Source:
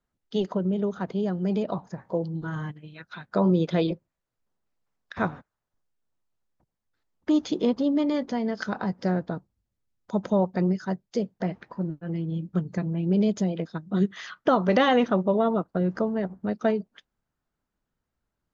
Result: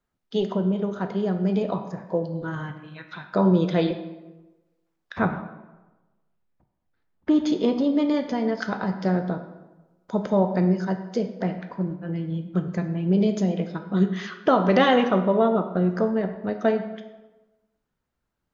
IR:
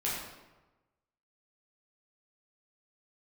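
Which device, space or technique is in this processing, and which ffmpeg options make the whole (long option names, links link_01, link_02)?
filtered reverb send: -filter_complex "[0:a]asettb=1/sr,asplit=3[link_01][link_02][link_03];[link_01]atrim=end=5.194[link_04];[link_02]atrim=start=5.19:end=7.46,asetpts=PTS-STARTPTS,afade=type=in:duration=0.004:curve=qsin,afade=type=out:start_time=2.266:duration=0.004:curve=qsin,bass=frequency=250:gain=5,treble=frequency=4000:gain=-10[link_05];[link_03]atrim=start=7.456[link_06];[link_04][link_05]acrossfade=duration=0.004:curve1=hsin:curve2=qsin[link_07];[link_07][link_06]acrossfade=duration=0.004:curve1=qsin:curve2=hsin,asplit=2[link_08][link_09];[link_09]highpass=frequency=200:poles=1,lowpass=5900[link_10];[1:a]atrim=start_sample=2205[link_11];[link_10][link_11]afir=irnorm=-1:irlink=0,volume=-9.5dB[link_12];[link_08][link_12]amix=inputs=2:normalize=0"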